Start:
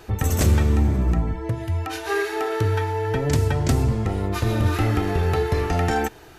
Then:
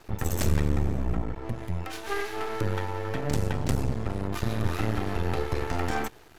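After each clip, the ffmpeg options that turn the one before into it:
-af "aeval=exprs='max(val(0),0)':c=same,volume=0.708"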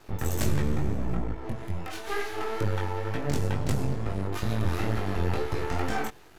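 -af "flanger=delay=18.5:depth=4.4:speed=2.2,volume=1.33"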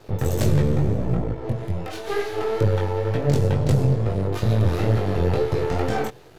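-af "equalizer=f=125:t=o:w=1:g=12,equalizer=f=500:t=o:w=1:g=11,equalizer=f=4000:t=o:w=1:g=4"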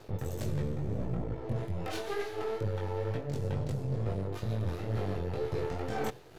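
-af "tremolo=f=2:d=0.54,areverse,acompressor=threshold=0.0316:ratio=6,areverse"

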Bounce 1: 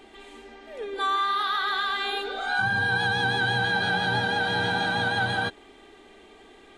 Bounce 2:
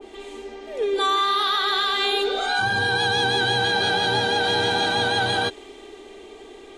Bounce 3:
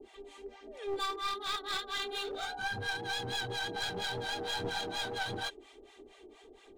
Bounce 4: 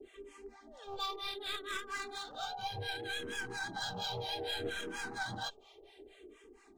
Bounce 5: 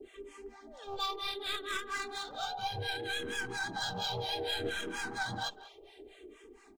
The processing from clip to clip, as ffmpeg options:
-filter_complex "[0:a]equalizer=f=160:t=o:w=0.67:g=-9,equalizer=f=400:t=o:w=0.67:g=7,equalizer=f=1600:t=o:w=0.67:g=-5,equalizer=f=6300:t=o:w=0.67:g=4,asplit=2[s0][s1];[s1]alimiter=limit=0.075:level=0:latency=1,volume=0.891[s2];[s0][s2]amix=inputs=2:normalize=0,adynamicequalizer=threshold=0.0178:dfrequency=1700:dqfactor=0.7:tfrequency=1700:tqfactor=0.7:attack=5:release=100:ratio=0.375:range=2:mode=boostabove:tftype=highshelf"
-filter_complex "[0:a]acrossover=split=640[s0][s1];[s0]aeval=exprs='val(0)*(1-1/2+1/2*cos(2*PI*4.3*n/s))':c=same[s2];[s1]aeval=exprs='val(0)*(1-1/2-1/2*cos(2*PI*4.3*n/s))':c=same[s3];[s2][s3]amix=inputs=2:normalize=0,aphaser=in_gain=1:out_gain=1:delay=3.7:decay=0.34:speed=1.5:type=triangular,aeval=exprs='clip(val(0),-1,0.0422)':c=same,volume=0.355"
-filter_complex "[0:a]asplit=2[s0][s1];[s1]afreqshift=-0.65[s2];[s0][s2]amix=inputs=2:normalize=1"
-filter_complex "[0:a]asplit=2[s0][s1];[s1]adelay=190,highpass=300,lowpass=3400,asoftclip=type=hard:threshold=0.02,volume=0.178[s2];[s0][s2]amix=inputs=2:normalize=0,volume=1.41"

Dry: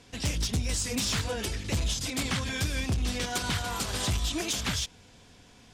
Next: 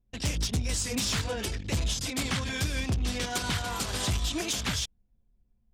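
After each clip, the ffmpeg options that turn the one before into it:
-af "anlmdn=1"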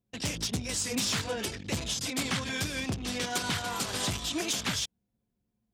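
-af "highpass=130"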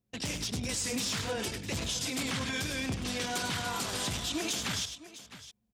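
-filter_complex "[0:a]asplit=2[s0][s1];[s1]aecho=0:1:99|657:0.282|0.126[s2];[s0][s2]amix=inputs=2:normalize=0,alimiter=limit=0.0631:level=0:latency=1:release=25"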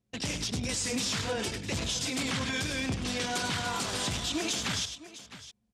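-af "lowpass=9700,volume=1.26"

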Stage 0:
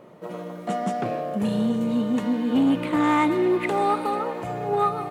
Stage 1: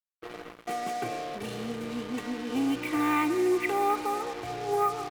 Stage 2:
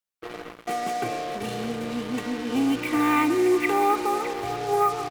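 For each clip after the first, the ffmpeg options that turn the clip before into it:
-af "equalizer=f=2300:t=o:w=0.54:g=9.5,aecho=1:1:2.6:0.75,acrusher=bits=4:mix=0:aa=0.5,volume=0.376"
-af "aecho=1:1:610:0.237,volume=1.68"

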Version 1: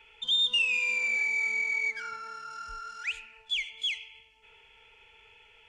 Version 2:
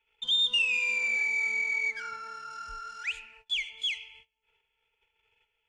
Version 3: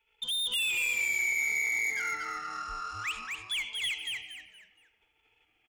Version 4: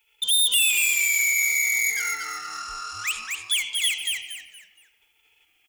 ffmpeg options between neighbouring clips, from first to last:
-af "agate=range=0.0891:threshold=0.002:ratio=16:detection=peak"
-filter_complex "[0:a]asoftclip=type=hard:threshold=0.0266,asplit=2[s0][s1];[s1]asplit=4[s2][s3][s4][s5];[s2]adelay=234,afreqshift=-130,volume=0.668[s6];[s3]adelay=468,afreqshift=-260,volume=0.214[s7];[s4]adelay=702,afreqshift=-390,volume=0.0684[s8];[s5]adelay=936,afreqshift=-520,volume=0.0219[s9];[s6][s7][s8][s9]amix=inputs=4:normalize=0[s10];[s0][s10]amix=inputs=2:normalize=0,volume=1.19"
-af "crystalizer=i=7:c=0,volume=0.75"

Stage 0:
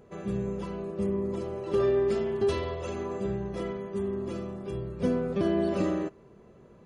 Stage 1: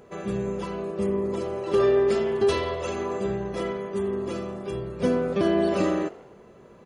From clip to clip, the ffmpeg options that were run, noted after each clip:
-filter_complex "[0:a]lowshelf=f=290:g=-8.5,asplit=6[s0][s1][s2][s3][s4][s5];[s1]adelay=84,afreqshift=49,volume=0.0841[s6];[s2]adelay=168,afreqshift=98,volume=0.0513[s7];[s3]adelay=252,afreqshift=147,volume=0.0313[s8];[s4]adelay=336,afreqshift=196,volume=0.0191[s9];[s5]adelay=420,afreqshift=245,volume=0.0116[s10];[s0][s6][s7][s8][s9][s10]amix=inputs=6:normalize=0,volume=2.37"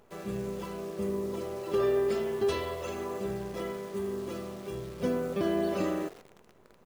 -af "acrusher=bits=8:dc=4:mix=0:aa=0.000001,volume=0.473"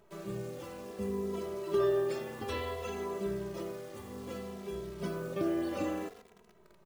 -filter_complex "[0:a]asplit=2[s0][s1];[s1]adelay=2.7,afreqshift=-0.6[s2];[s0][s2]amix=inputs=2:normalize=1"

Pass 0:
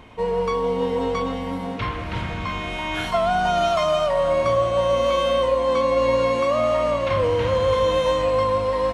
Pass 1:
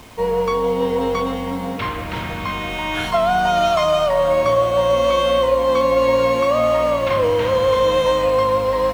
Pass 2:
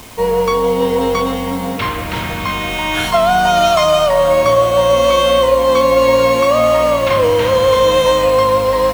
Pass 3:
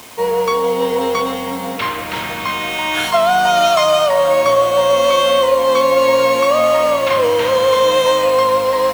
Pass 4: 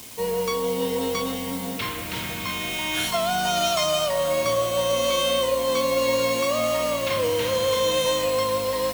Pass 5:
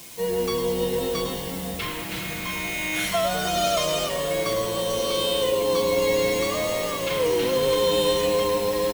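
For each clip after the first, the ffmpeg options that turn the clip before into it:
-filter_complex "[0:a]acrossover=split=170[s0][s1];[s0]alimiter=level_in=2.51:limit=0.0631:level=0:latency=1,volume=0.398[s2];[s1]acrusher=bits=7:mix=0:aa=0.000001[s3];[s2][s3]amix=inputs=2:normalize=0,volume=1.5"
-af "highshelf=f=5100:g=8.5,volume=1.68"
-af "highpass=f=360:p=1"
-af "equalizer=f=970:w=0.39:g=-12.5"
-filter_complex "[0:a]aecho=1:1:6:0.93,asplit=8[s0][s1][s2][s3][s4][s5][s6][s7];[s1]adelay=102,afreqshift=-110,volume=0.355[s8];[s2]adelay=204,afreqshift=-220,volume=0.207[s9];[s3]adelay=306,afreqshift=-330,volume=0.119[s10];[s4]adelay=408,afreqshift=-440,volume=0.0692[s11];[s5]adelay=510,afreqshift=-550,volume=0.0403[s12];[s6]adelay=612,afreqshift=-660,volume=0.0232[s13];[s7]adelay=714,afreqshift=-770,volume=0.0135[s14];[s0][s8][s9][s10][s11][s12][s13][s14]amix=inputs=8:normalize=0,volume=0.631"

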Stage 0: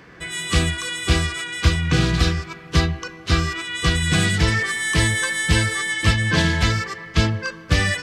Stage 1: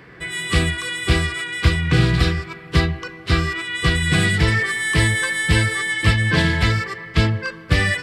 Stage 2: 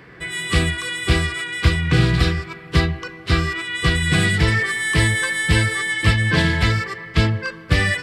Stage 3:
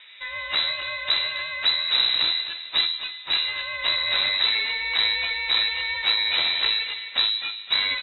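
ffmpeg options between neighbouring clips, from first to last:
-af "equalizer=f=125:t=o:w=0.33:g=6,equalizer=f=400:t=o:w=0.33:g=4,equalizer=f=2000:t=o:w=0.33:g=4,equalizer=f=6300:t=o:w=0.33:g=-10"
-af anull
-af "aeval=exprs='clip(val(0),-1,0.0473)':c=same,aecho=1:1:256|512|768|1024:0.224|0.0873|0.0341|0.0133,lowpass=f=3400:t=q:w=0.5098,lowpass=f=3400:t=q:w=0.6013,lowpass=f=3400:t=q:w=0.9,lowpass=f=3400:t=q:w=2.563,afreqshift=-4000,volume=0.668"

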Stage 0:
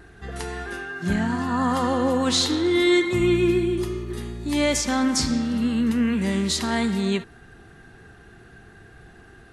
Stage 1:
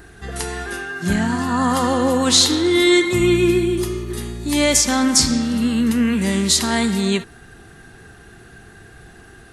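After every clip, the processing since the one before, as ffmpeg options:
-af "highshelf=f=5600:g=11,volume=1.58"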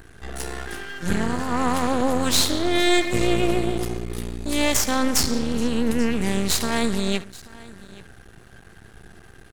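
-af "lowshelf=f=160:g=5,aecho=1:1:833:0.0891,aeval=exprs='max(val(0),0)':c=same,volume=0.794"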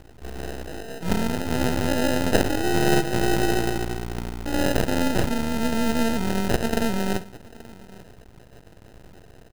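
-af "acrusher=samples=39:mix=1:aa=0.000001,volume=0.891"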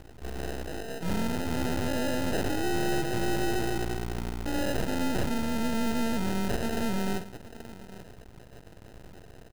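-af "asoftclip=type=tanh:threshold=0.106,volume=0.891"

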